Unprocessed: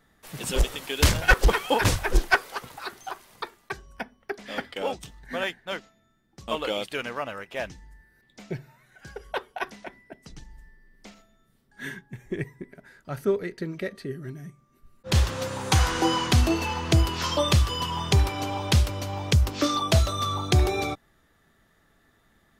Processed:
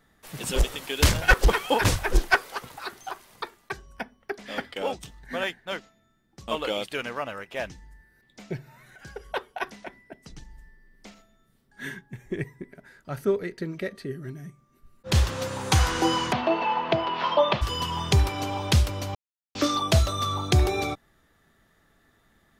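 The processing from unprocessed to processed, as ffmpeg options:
ffmpeg -i in.wav -filter_complex "[0:a]asettb=1/sr,asplit=3[link_01][link_02][link_03];[link_01]atrim=end=8.534[link_04];[link_02]atrim=start=8.53:end=9.45,asetpts=PTS-STARTPTS,afade=type=in:duration=0.004:curve=qsin,afade=type=out:start_time=0.916:duration=0.004:curve=qsin,acompressor=mode=upward:threshold=-43dB:ratio=2.5:attack=3.2:release=140:knee=2.83:detection=peak[link_05];[link_03]atrim=start=9.446[link_06];[link_04][link_05]acrossfade=duration=0.004:curve1=hsin:curve2=qsin[link_07];[link_07][link_06]acrossfade=duration=0.004:curve1=qsin:curve2=hsin,asplit=3[link_08][link_09][link_10];[link_08]afade=type=out:start_time=16.31:duration=0.02[link_11];[link_09]highpass=frequency=170:width=0.5412,highpass=frequency=170:width=1.3066,equalizer=frequency=180:width_type=q:width=4:gain=-5,equalizer=frequency=300:width_type=q:width=4:gain=-7,equalizer=frequency=650:width_type=q:width=4:gain=8,equalizer=frequency=930:width_type=q:width=4:gain=8,lowpass=frequency=3400:width=0.5412,lowpass=frequency=3400:width=1.3066,afade=type=in:start_time=16.31:duration=0.02,afade=type=out:start_time=17.61:duration=0.02[link_12];[link_10]afade=type=in:start_time=17.61:duration=0.02[link_13];[link_11][link_12][link_13]amix=inputs=3:normalize=0,asplit=3[link_14][link_15][link_16];[link_14]atrim=end=19.15,asetpts=PTS-STARTPTS,afade=type=out:start_time=19.146:duration=0.004:curve=hsin[link_17];[link_15]atrim=start=19.15:end=19.55,asetpts=PTS-STARTPTS,volume=0[link_18];[link_16]atrim=start=19.55,asetpts=PTS-STARTPTS,afade=type=in:duration=0.004:curve=hsin[link_19];[link_17][link_18][link_19]concat=n=3:v=0:a=1" out.wav

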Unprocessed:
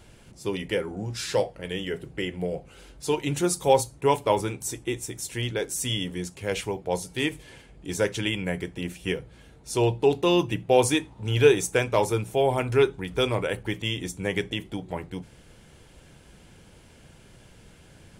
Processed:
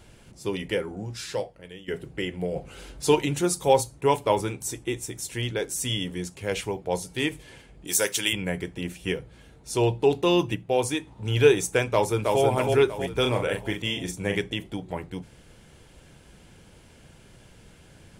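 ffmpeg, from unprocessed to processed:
ffmpeg -i in.wav -filter_complex "[0:a]asettb=1/sr,asplit=3[link_01][link_02][link_03];[link_01]atrim=end=7.874[link_04];[link_02]atrim=start=7.87:end=8.33,asetpts=PTS-STARTPTS,afade=type=in:duration=0.004:curve=qsin,afade=type=out:start_time=0.456:duration=0.004:curve=qsin,aemphasis=mode=production:type=riaa[link_05];[link_03]atrim=start=8.326[link_06];[link_04][link_05]acrossfade=duration=0.004:curve1=hsin:curve2=qsin[link_07];[link_07][link_06]acrossfade=duration=0.004:curve1=qsin:curve2=hsin,asplit=2[link_08][link_09];[link_09]afade=type=in:start_time=11.86:duration=0.01,afade=type=out:start_time=12.42:duration=0.01,aecho=0:1:320|640|960|1280|1600|1920|2240:0.749894|0.374947|0.187474|0.0937368|0.0468684|0.0234342|0.0117171[link_10];[link_08][link_10]amix=inputs=2:normalize=0,asplit=3[link_11][link_12][link_13];[link_11]afade=type=out:start_time=13.22:duration=0.02[link_14];[link_12]asplit=2[link_15][link_16];[link_16]adelay=40,volume=-5.5dB[link_17];[link_15][link_17]amix=inputs=2:normalize=0,afade=type=in:start_time=13.22:duration=0.02,afade=type=out:start_time=14.36:duration=0.02[link_18];[link_13]afade=type=in:start_time=14.36:duration=0.02[link_19];[link_14][link_18][link_19]amix=inputs=3:normalize=0,asplit=6[link_20][link_21][link_22][link_23][link_24][link_25];[link_20]atrim=end=1.88,asetpts=PTS-STARTPTS,afade=type=out:start_time=0.73:duration=1.15:silence=0.16788[link_26];[link_21]atrim=start=1.88:end=2.562,asetpts=PTS-STARTPTS,afade=type=in:duration=0.004:curve=hsin:silence=0.16788[link_27];[link_22]atrim=start=2.558:end=3.262,asetpts=PTS-STARTPTS,volume=5.5dB[link_28];[link_23]atrim=start=3.258:end=10.552[link_29];[link_24]atrim=start=10.548:end=11.072,asetpts=PTS-STARTPTS,volume=-4.5dB[link_30];[link_25]atrim=start=11.068[link_31];[link_26][link_27]concat=n=2:v=0:a=1[link_32];[link_32][link_28]acrossfade=duration=0.004:curve1=hsin:curve2=hsin[link_33];[link_33][link_29]acrossfade=duration=0.004:curve1=hsin:curve2=hsin[link_34];[link_34][link_30]acrossfade=duration=0.004:curve1=hsin:curve2=hsin[link_35];[link_35][link_31]acrossfade=duration=0.004:curve1=hsin:curve2=hsin" out.wav

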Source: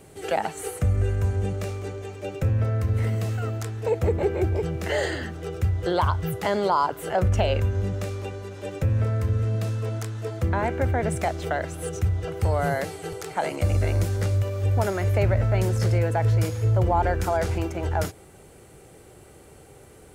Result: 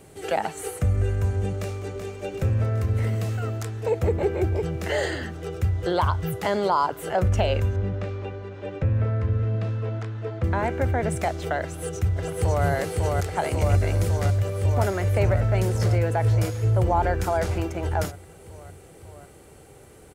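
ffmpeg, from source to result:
ffmpeg -i in.wav -filter_complex "[0:a]asplit=2[link_01][link_02];[link_02]afade=type=in:start_time=1.57:duration=0.01,afade=type=out:start_time=2.23:duration=0.01,aecho=0:1:380|760|1140|1520|1900|2280|2660|3040:0.446684|0.26801|0.160806|0.0964837|0.0578902|0.0347341|0.0208405|0.0125043[link_03];[link_01][link_03]amix=inputs=2:normalize=0,asettb=1/sr,asplit=3[link_04][link_05][link_06];[link_04]atrim=end=7.764[link_07];[link_05]atrim=start=7.76:end=10.44,asetpts=PTS-STARTPTS,afade=type=in:duration=0.004:curve=qsin,afade=type=out:start_time=2.676:duration=0.004:curve=qsin,lowpass=2900[link_08];[link_06]atrim=start=10.436[link_09];[link_07][link_08]acrossfade=duration=0.004:curve1=hsin:curve2=qsin[link_10];[link_10][link_09]acrossfade=duration=0.004:curve1=qsin:curve2=hsin,asplit=2[link_11][link_12];[link_12]afade=type=in:start_time=11.61:duration=0.01,afade=type=out:start_time=12.65:duration=0.01,aecho=0:1:550|1100|1650|2200|2750|3300|3850|4400|4950|5500|6050|6600:0.794328|0.635463|0.50837|0.406696|0.325357|0.260285|0.208228|0.166583|0.133266|0.106613|0.0852903|0.0682323[link_13];[link_11][link_13]amix=inputs=2:normalize=0" out.wav

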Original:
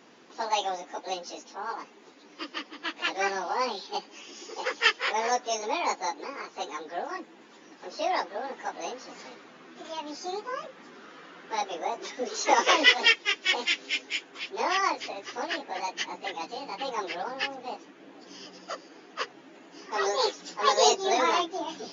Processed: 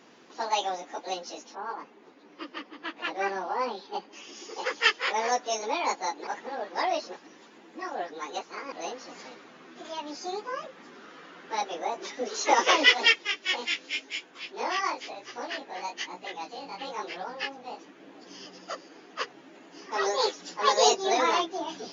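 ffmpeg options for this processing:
ffmpeg -i in.wav -filter_complex "[0:a]asettb=1/sr,asplit=3[link_01][link_02][link_03];[link_01]atrim=end=1.554[link_04];[link_02]atrim=start=1.55:end=4.13,asetpts=PTS-STARTPTS,afade=type=in:duration=0.004:curve=qsin,afade=type=out:start_time=2.576:duration=0.004:curve=qsin,lowpass=frequency=1800:poles=1[link_05];[link_03]atrim=start=4.126[link_06];[link_04][link_05]acrossfade=duration=0.004:curve1=hsin:curve2=qsin[link_07];[link_07][link_06]acrossfade=duration=0.004:curve1=qsin:curve2=hsin,asettb=1/sr,asplit=3[link_08][link_09][link_10];[link_08]atrim=end=13.274[link_11];[link_09]atrim=start=13.27:end=17.79,asetpts=PTS-STARTPTS,afade=type=in:duration=0.004:curve=qsin,afade=type=out:start_time=4.516:duration=0.004:curve=qsin,flanger=delay=16:depth=5.7:speed=1[link_12];[link_10]atrim=start=17.786[link_13];[link_11][link_12]acrossfade=duration=0.004:curve1=hsin:curve2=qsin[link_14];[link_14][link_13]acrossfade=duration=0.004:curve1=qsin:curve2=hsin,asplit=3[link_15][link_16][link_17];[link_15]atrim=end=6.272[link_18];[link_16]atrim=start=6.268:end=8.722,asetpts=PTS-STARTPTS,areverse[link_19];[link_17]atrim=start=8.718[link_20];[link_18][link_19]acrossfade=duration=0.004:curve1=hsin:curve2=hsin[link_21];[link_21][link_20]acrossfade=duration=0.004:curve1=hsin:curve2=hsin" out.wav

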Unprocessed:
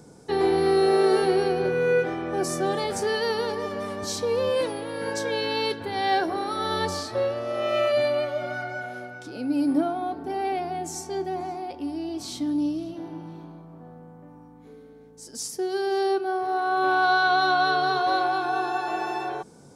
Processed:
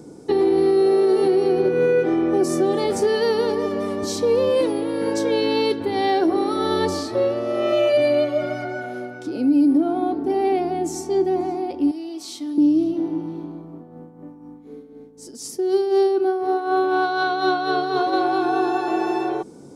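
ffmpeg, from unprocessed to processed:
ffmpeg -i in.wav -filter_complex "[0:a]asettb=1/sr,asplit=3[link_01][link_02][link_03];[link_01]atrim=end=7.724[link_04];[link_02]atrim=start=7.72:end=8.65,asetpts=PTS-STARTPTS,afade=type=in:duration=0.004:curve=qsin,afade=type=out:start_time=0.926:duration=0.004:curve=qsin,aecho=1:1:6.4:0.65,atrim=end_sample=41013[link_05];[link_03]atrim=start=8.646[link_06];[link_04][link_05]acrossfade=duration=0.004:curve1=hsin:curve2=qsin[link_07];[link_07][link_06]acrossfade=duration=0.004:curve1=qsin:curve2=hsin,asettb=1/sr,asplit=3[link_08][link_09][link_10];[link_08]atrim=end=11.914[link_11];[link_09]atrim=start=11.91:end=12.58,asetpts=PTS-STARTPTS,afade=type=in:duration=0.004:curve=qsin,afade=type=out:start_time=0.666:duration=0.004:curve=qsin,highpass=frequency=1500:poles=1[link_12];[link_10]atrim=start=12.576[link_13];[link_11][link_12]acrossfade=duration=0.004:curve1=hsin:curve2=qsin[link_14];[link_14][link_13]acrossfade=duration=0.004:curve1=qsin:curve2=hsin,asplit=3[link_15][link_16][link_17];[link_15]afade=type=out:start_time=13.7:duration=0.02[link_18];[link_16]tremolo=f=4:d=0.55,afade=type=in:start_time=13.7:duration=0.02,afade=type=out:start_time=18.12:duration=0.02[link_19];[link_17]afade=type=in:start_time=18.12:duration=0.02[link_20];[link_18][link_19][link_20]amix=inputs=3:normalize=0,equalizer=frequency=320:width=1.4:gain=12,bandreject=frequency=1600:width=10,alimiter=limit=-12dB:level=0:latency=1:release=157,volume=1.5dB" out.wav

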